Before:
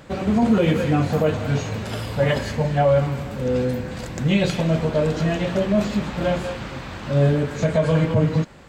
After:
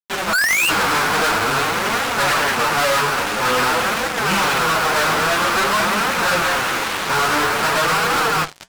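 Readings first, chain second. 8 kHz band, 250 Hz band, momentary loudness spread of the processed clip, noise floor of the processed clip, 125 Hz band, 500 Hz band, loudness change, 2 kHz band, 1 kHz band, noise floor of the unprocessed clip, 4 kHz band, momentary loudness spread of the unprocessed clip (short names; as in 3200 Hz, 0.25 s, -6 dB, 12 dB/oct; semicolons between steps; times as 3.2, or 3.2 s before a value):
+17.0 dB, -6.5 dB, 3 LU, -25 dBFS, -11.0 dB, -1.5 dB, +4.5 dB, +15.0 dB, +13.0 dB, -34 dBFS, +13.0 dB, 9 LU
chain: half-waves squared off; AGC gain up to 11.5 dB; thinning echo 0.974 s, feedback 46%, high-pass 850 Hz, level -23 dB; painted sound rise, 0.33–0.69, 1400–2900 Hz -3 dBFS; dynamic EQ 1300 Hz, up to +8 dB, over -26 dBFS, Q 0.8; flange 0.49 Hz, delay 3.5 ms, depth 8.5 ms, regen +32%; speaker cabinet 470–4500 Hz, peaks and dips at 590 Hz -4 dB, 1400 Hz +4 dB, 2500 Hz +3 dB; fuzz box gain 35 dB, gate -31 dBFS; flange 1.7 Hz, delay 5.2 ms, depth 5.4 ms, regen -70%; gain +1.5 dB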